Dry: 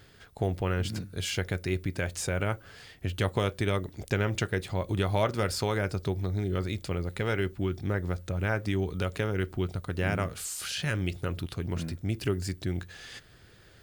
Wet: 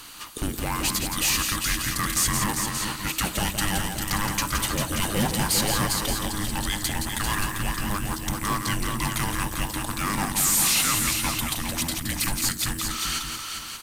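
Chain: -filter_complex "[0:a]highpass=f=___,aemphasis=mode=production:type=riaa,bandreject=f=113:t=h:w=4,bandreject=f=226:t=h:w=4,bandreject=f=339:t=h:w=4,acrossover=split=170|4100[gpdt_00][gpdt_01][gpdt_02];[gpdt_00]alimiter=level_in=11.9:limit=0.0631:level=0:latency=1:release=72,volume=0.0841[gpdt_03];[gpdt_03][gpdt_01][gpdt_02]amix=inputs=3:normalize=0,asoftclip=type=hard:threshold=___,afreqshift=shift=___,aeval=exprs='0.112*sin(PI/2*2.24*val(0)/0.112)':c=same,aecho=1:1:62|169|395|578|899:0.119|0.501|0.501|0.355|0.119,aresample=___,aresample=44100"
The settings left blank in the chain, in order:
44, 0.0422, -410, 32000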